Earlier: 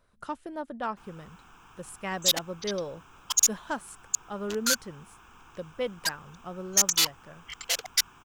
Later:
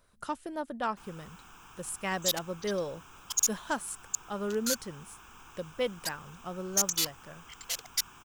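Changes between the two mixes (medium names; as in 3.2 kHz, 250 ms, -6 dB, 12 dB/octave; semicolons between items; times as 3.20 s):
second sound -11.5 dB; master: add treble shelf 4.4 kHz +9 dB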